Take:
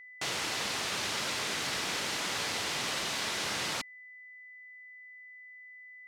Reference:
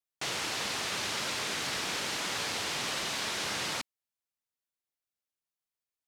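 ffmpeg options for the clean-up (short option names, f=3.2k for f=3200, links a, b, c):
-af "bandreject=f=2k:w=30"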